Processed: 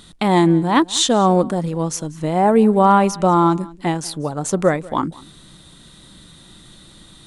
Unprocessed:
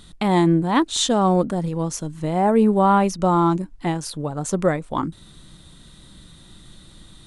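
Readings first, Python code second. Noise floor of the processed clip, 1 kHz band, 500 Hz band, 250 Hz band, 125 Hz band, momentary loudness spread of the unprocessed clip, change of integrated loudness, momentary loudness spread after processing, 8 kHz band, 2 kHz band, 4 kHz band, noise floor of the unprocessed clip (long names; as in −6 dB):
−46 dBFS, +4.0 dB, +3.5 dB, +2.5 dB, +1.5 dB, 11 LU, +3.0 dB, 11 LU, +4.0 dB, +4.0 dB, +4.0 dB, −47 dBFS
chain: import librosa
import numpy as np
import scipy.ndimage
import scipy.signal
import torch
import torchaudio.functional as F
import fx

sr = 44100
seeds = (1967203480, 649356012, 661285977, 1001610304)

y = fx.low_shelf(x, sr, hz=98.0, db=-9.5)
y = np.clip(y, -10.0 ** (-8.5 / 20.0), 10.0 ** (-8.5 / 20.0))
y = y + 10.0 ** (-22.0 / 20.0) * np.pad(y, (int(191 * sr / 1000.0), 0))[:len(y)]
y = F.gain(torch.from_numpy(y), 4.0).numpy()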